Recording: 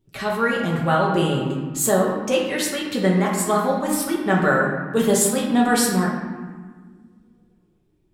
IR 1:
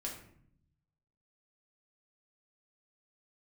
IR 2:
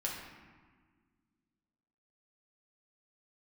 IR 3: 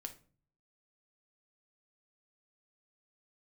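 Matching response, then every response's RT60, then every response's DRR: 2; 0.65, 1.6, 0.40 s; -2.5, -3.5, 4.5 dB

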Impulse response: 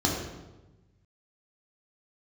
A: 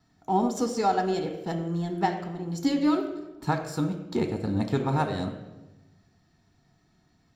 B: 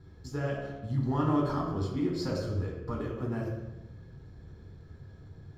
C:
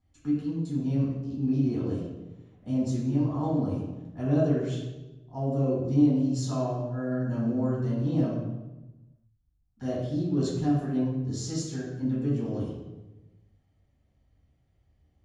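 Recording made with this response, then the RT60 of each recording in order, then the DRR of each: B; 1.1, 1.1, 1.1 s; 4.5, -3.0, -8.0 dB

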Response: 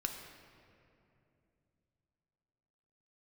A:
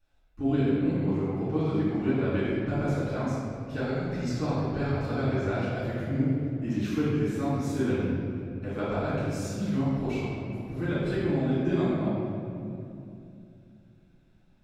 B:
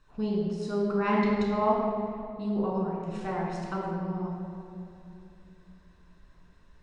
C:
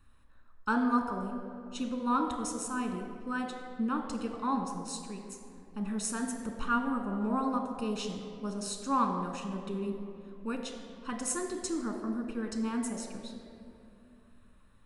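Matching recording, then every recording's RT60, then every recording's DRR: C; 2.7, 2.7, 2.8 s; -12.0, -4.0, 3.0 dB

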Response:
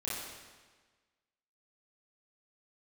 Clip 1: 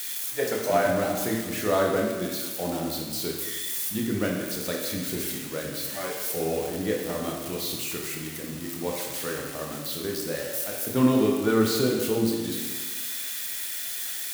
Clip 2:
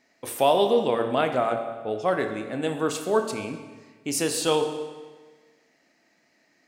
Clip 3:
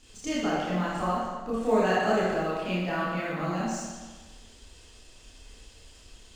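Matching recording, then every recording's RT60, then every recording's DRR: 3; 1.4, 1.4, 1.4 s; -1.0, 5.5, -8.5 dB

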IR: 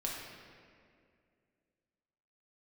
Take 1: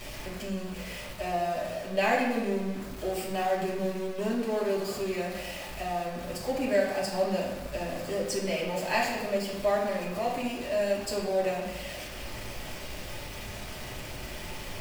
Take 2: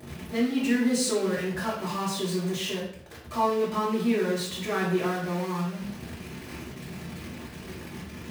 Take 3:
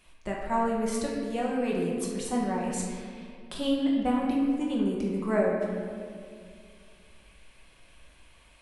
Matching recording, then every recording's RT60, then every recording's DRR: 3; 1.1, 0.60, 2.3 s; -6.5, -9.0, -3.5 dB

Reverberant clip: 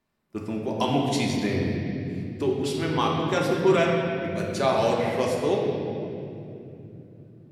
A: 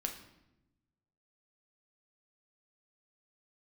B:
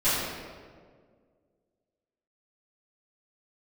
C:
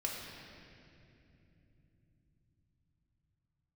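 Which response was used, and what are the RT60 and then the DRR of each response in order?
C; 0.90, 1.8, 2.9 s; 3.0, -17.0, -2.5 dB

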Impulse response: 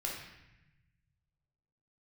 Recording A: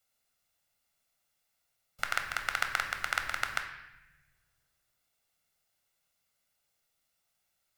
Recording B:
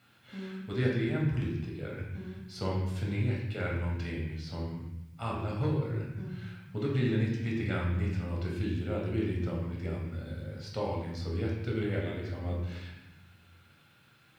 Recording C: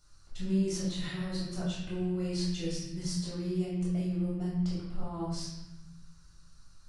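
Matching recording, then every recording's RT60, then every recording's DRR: B; 0.95, 0.90, 0.90 s; 4.5, -2.5, -8.5 dB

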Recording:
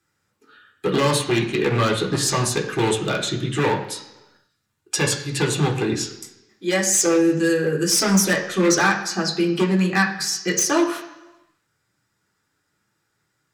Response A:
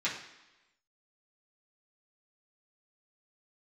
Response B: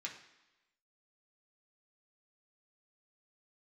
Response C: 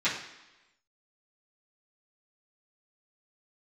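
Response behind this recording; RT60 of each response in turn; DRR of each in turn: B; 1.0, 1.0, 1.0 s; -9.5, -2.0, -13.5 dB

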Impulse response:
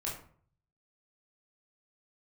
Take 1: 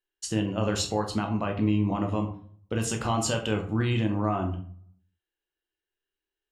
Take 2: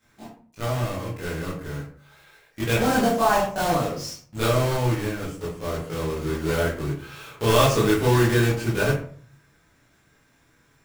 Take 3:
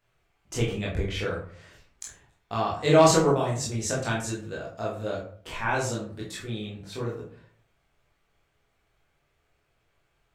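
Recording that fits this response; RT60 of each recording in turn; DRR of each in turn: 3; 0.50, 0.50, 0.50 s; 3.0, -9.5, -5.5 dB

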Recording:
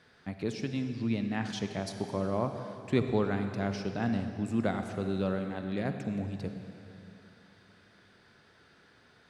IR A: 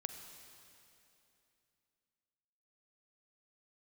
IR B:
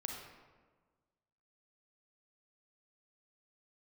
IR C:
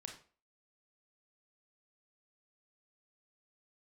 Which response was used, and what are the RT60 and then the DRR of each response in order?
A; 2.9, 1.5, 0.40 s; 6.5, 1.0, 2.0 dB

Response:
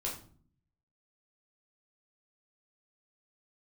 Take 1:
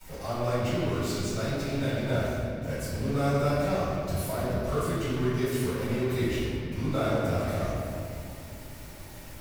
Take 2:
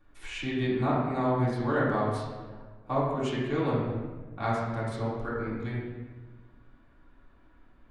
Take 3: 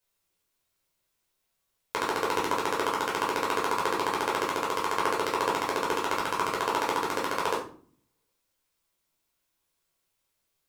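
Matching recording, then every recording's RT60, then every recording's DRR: 3; 2.5, 1.4, 0.45 s; -13.5, -9.0, -4.0 dB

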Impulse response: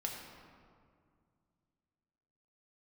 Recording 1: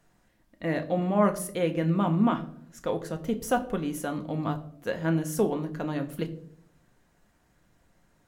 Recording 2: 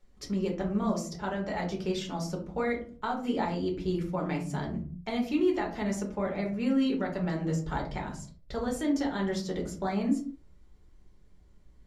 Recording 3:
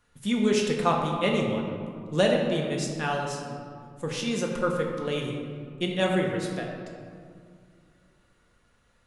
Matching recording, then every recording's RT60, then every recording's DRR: 3; 0.65, 0.45, 2.1 s; 6.0, -0.5, -0.5 dB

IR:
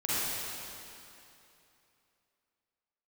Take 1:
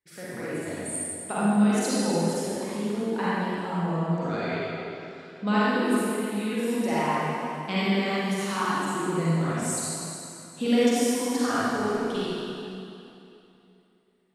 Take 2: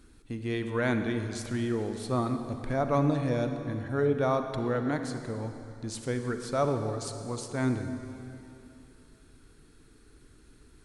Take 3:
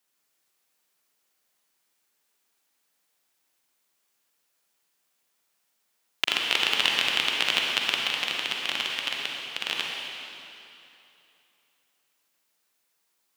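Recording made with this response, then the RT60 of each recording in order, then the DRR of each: 1; 2.8, 2.8, 2.8 s; -10.5, 6.5, -1.5 dB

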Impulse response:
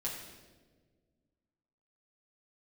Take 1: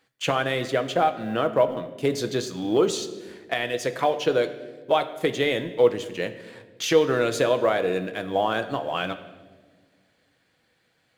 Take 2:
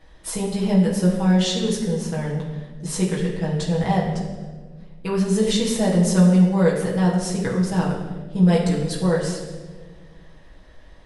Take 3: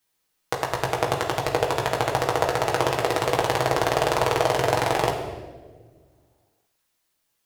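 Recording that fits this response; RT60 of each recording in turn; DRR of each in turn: 2; 1.5, 1.5, 1.5 s; 8.0, -5.5, -1.5 dB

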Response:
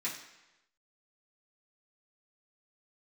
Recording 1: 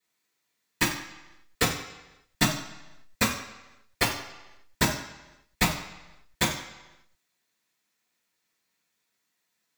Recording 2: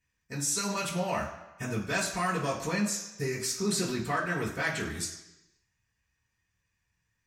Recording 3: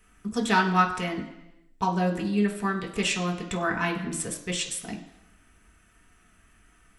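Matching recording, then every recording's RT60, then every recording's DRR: 2; 1.0, 1.0, 1.0 s; -18.0, -9.0, -1.0 dB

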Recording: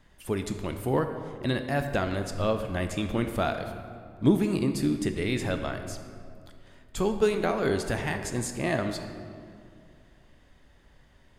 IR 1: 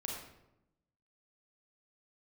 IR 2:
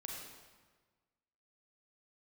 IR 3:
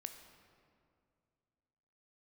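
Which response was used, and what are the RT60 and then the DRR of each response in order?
3; 0.90, 1.4, 2.3 s; -2.0, -1.5, 6.5 dB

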